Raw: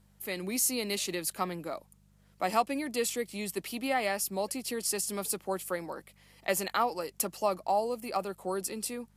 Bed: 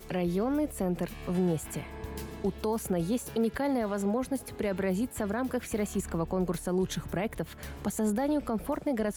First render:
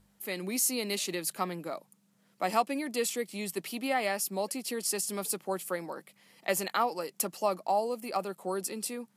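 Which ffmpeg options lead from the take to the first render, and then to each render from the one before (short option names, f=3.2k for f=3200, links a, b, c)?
-af "bandreject=f=50:t=h:w=4,bandreject=f=100:t=h:w=4,bandreject=f=150:t=h:w=4"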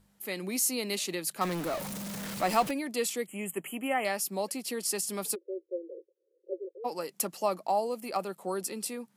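-filter_complex "[0:a]asettb=1/sr,asplit=3[a][b][c];[a]atrim=end=1.414[d];[b]atrim=start=1.41:end=2.71,asetpts=PTS-STARTPTS,afade=t=in:d=0.004:c=qsin,afade=t=out:st=1.296:d=0.004:c=qsin,aeval=exprs='val(0)+0.5*0.0251*sgn(val(0))':c=same[e];[c]atrim=start=2.706[f];[d][e]acrossfade=d=0.004:c1=hsin:c2=qsin[g];[g][f]acrossfade=d=0.004:c1=qsin:c2=hsin,asettb=1/sr,asplit=3[h][i][j];[h]atrim=end=3.264[k];[i]atrim=start=3.26:end=4.05,asetpts=PTS-STARTPTS,afade=t=in:d=0.004:c=qsin,afade=t=out:st=0.786:d=0.004:c=qsin,asuperstop=centerf=4700:order=20:qfactor=1.3[l];[j]atrim=start=4.046[m];[k][l]acrossfade=d=0.004:c1=hsin:c2=qsin[n];[n][m]acrossfade=d=0.004:c1=qsin:c2=hsin,asplit=3[o][p][q];[o]afade=t=out:st=5.34:d=0.02[r];[p]asuperpass=centerf=430:order=20:qfactor=1.9,afade=t=in:st=5.34:d=0.02,afade=t=out:st=6.84:d=0.02[s];[q]afade=t=in:st=6.84:d=0.02[t];[r][s][t]amix=inputs=3:normalize=0"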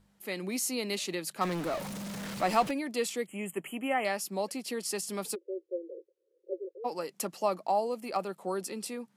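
-af "highshelf=f=9.6k:g=-11"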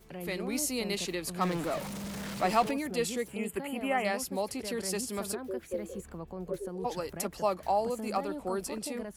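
-filter_complex "[1:a]volume=-11dB[a];[0:a][a]amix=inputs=2:normalize=0"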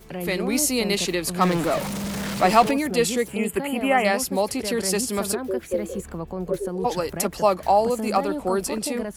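-af "volume=10dB"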